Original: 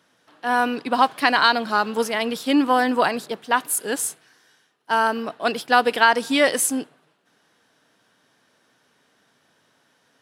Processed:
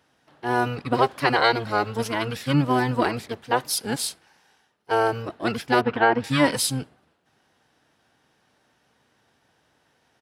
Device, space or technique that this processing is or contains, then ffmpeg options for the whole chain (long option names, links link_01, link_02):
octave pedal: -filter_complex "[0:a]asplit=2[link_01][link_02];[link_02]asetrate=22050,aresample=44100,atempo=2,volume=0dB[link_03];[link_01][link_03]amix=inputs=2:normalize=0,asettb=1/sr,asplit=3[link_04][link_05][link_06];[link_04]atrim=end=5.814[link_07];[link_05]atrim=start=5.81:end=6.24,asetpts=PTS-STARTPTS,afade=type=in:duration=0.004:curve=qsin,afade=type=out:start_time=0.426:duration=0.004:curve=qsin,lowpass=2200[link_08];[link_06]atrim=start=6.236[link_09];[link_07][link_08]acrossfade=duration=0.004:curve1=hsin:curve2=qsin[link_10];[link_10][link_09]acrossfade=duration=0.004:curve1=qsin:curve2=hsin,volume=-5dB"